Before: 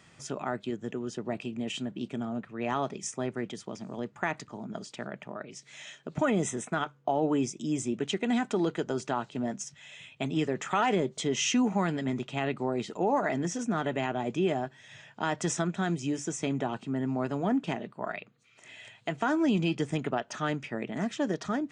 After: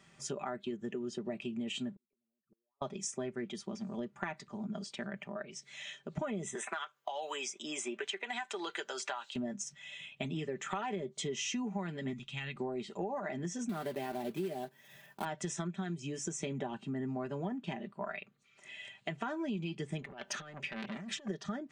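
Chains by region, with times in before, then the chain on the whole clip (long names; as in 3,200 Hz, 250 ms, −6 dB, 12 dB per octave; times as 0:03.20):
0:01.95–0:02.82: spectral envelope exaggerated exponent 3 + downward compressor 5 to 1, threshold −43 dBFS + gate with flip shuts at −41 dBFS, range −41 dB
0:06.55–0:09.36: high-pass filter 800 Hz + multiband upward and downward compressor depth 100%
0:12.13–0:12.56: parametric band 560 Hz −15 dB 2.4 octaves + notch filter 380 Hz, Q 6.4
0:13.69–0:15.26: one scale factor per block 3 bits + high-pass filter 260 Hz 6 dB per octave + tilt shelving filter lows +5 dB, about 790 Hz
0:20.02–0:21.28: compressor whose output falls as the input rises −35 dBFS, ratio −0.5 + saturating transformer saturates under 2,300 Hz
whole clip: noise reduction from a noise print of the clip's start 6 dB; comb filter 5.1 ms, depth 56%; downward compressor 6 to 1, threshold −35 dBFS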